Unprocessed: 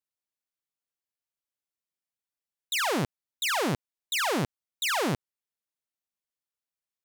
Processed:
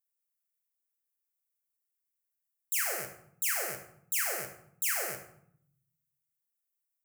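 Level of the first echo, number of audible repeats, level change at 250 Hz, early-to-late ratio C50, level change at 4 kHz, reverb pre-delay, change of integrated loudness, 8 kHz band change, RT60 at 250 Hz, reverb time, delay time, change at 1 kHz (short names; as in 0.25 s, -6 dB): none, none, -22.0 dB, 8.0 dB, -12.0 dB, 9 ms, -2.5 dB, +2.0 dB, 1.1 s, 0.65 s, none, -12.0 dB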